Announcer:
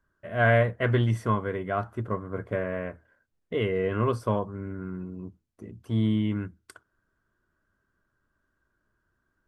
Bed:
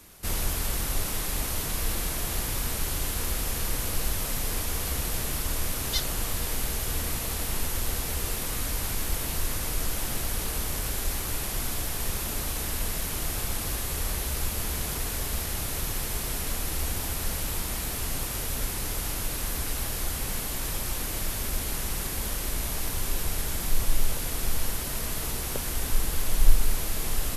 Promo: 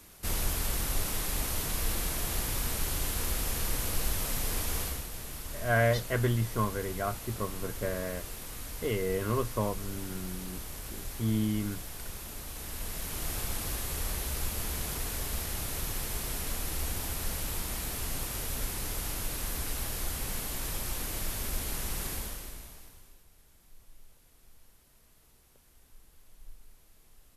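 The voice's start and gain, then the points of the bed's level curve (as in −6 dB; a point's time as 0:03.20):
5.30 s, −4.5 dB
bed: 0:04.81 −2.5 dB
0:05.08 −11 dB
0:12.47 −11 dB
0:13.31 −4 dB
0:22.13 −4 dB
0:23.25 −31.5 dB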